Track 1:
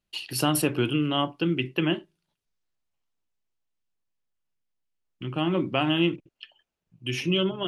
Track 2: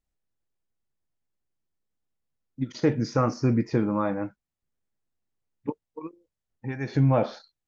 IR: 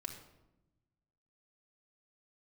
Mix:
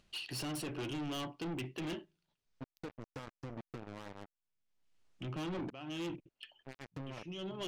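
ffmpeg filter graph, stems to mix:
-filter_complex "[0:a]lowpass=7600,alimiter=limit=-16dB:level=0:latency=1:release=489,volume=-3.5dB[link_01];[1:a]acompressor=threshold=-25dB:ratio=12,acrusher=bits=3:mix=0:aa=0.5,volume=-6.5dB,asplit=2[link_02][link_03];[link_03]apad=whole_len=338520[link_04];[link_01][link_04]sidechaincompress=threshold=-52dB:ratio=12:attack=37:release=290[link_05];[link_05][link_02]amix=inputs=2:normalize=0,acompressor=mode=upward:threshold=-57dB:ratio=2.5,asoftclip=type=tanh:threshold=-36.5dB"

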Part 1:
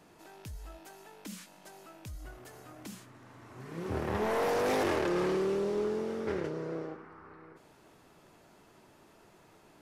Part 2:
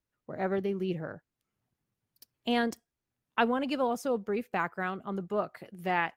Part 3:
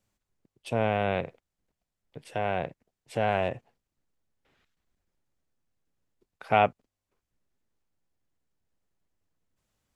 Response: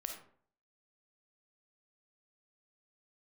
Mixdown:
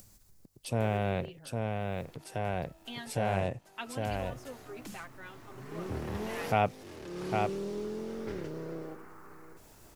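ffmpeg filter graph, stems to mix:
-filter_complex "[0:a]acrossover=split=300|3000[link_01][link_02][link_03];[link_02]acompressor=threshold=-40dB:ratio=6[link_04];[link_01][link_04][link_03]amix=inputs=3:normalize=0,adelay=2000,volume=-0.5dB[link_05];[1:a]equalizer=frequency=3400:width=0.92:gain=10.5,aecho=1:1:7.5:0.84,adelay=400,volume=-19dB[link_06];[2:a]lowshelf=frequency=210:gain=10,acompressor=mode=upward:threshold=-38dB:ratio=2.5,aexciter=amount=2:drive=8.6:freq=4300,volume=-6.5dB,asplit=3[link_07][link_08][link_09];[link_08]volume=-4dB[link_10];[link_09]apad=whole_len=520991[link_11];[link_05][link_11]sidechaincompress=threshold=-41dB:ratio=4:attack=16:release=515[link_12];[link_10]aecho=0:1:806:1[link_13];[link_12][link_06][link_07][link_13]amix=inputs=4:normalize=0"

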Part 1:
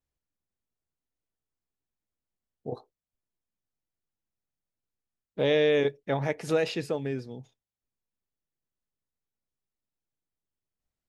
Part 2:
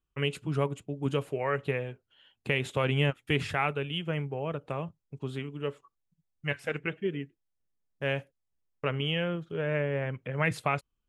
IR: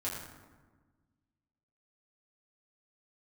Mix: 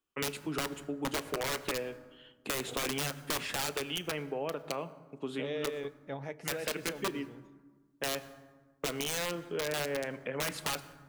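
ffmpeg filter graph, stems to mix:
-filter_complex "[0:a]volume=-12dB,asplit=2[link_01][link_02];[link_02]volume=-20.5dB[link_03];[1:a]highpass=frequency=210:width=0.5412,highpass=frequency=210:width=1.3066,aeval=exprs='(mod(15.8*val(0)+1,2)-1)/15.8':channel_layout=same,volume=1.5dB,asplit=2[link_04][link_05];[link_05]volume=-15.5dB[link_06];[2:a]atrim=start_sample=2205[link_07];[link_03][link_06]amix=inputs=2:normalize=0[link_08];[link_08][link_07]afir=irnorm=-1:irlink=0[link_09];[link_01][link_04][link_09]amix=inputs=3:normalize=0,acompressor=threshold=-32dB:ratio=3"

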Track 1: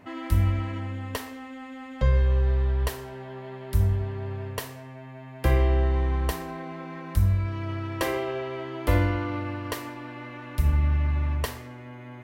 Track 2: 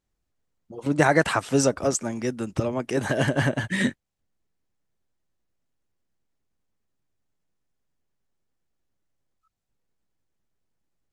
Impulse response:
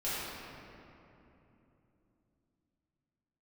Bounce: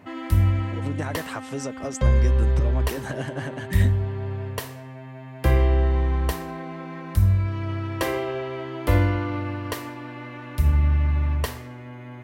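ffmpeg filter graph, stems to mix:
-filter_complex "[0:a]highpass=58,volume=1.5dB[link_01];[1:a]acompressor=threshold=-26dB:ratio=6,volume=-2.5dB[link_02];[link_01][link_02]amix=inputs=2:normalize=0,lowshelf=frequency=150:gain=4"

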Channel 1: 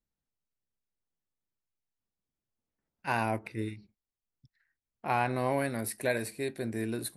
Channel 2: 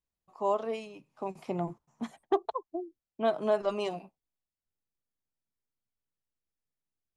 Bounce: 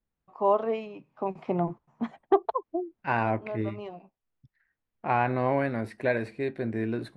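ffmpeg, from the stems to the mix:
ffmpeg -i stem1.wav -i stem2.wav -filter_complex "[0:a]acontrast=24,volume=-1dB,asplit=2[link_01][link_02];[1:a]dynaudnorm=framelen=120:gausssize=3:maxgain=9dB,volume=-3.5dB[link_03];[link_02]apad=whole_len=315948[link_04];[link_03][link_04]sidechaincompress=threshold=-46dB:ratio=3:attack=48:release=787[link_05];[link_01][link_05]amix=inputs=2:normalize=0,lowpass=2300" out.wav

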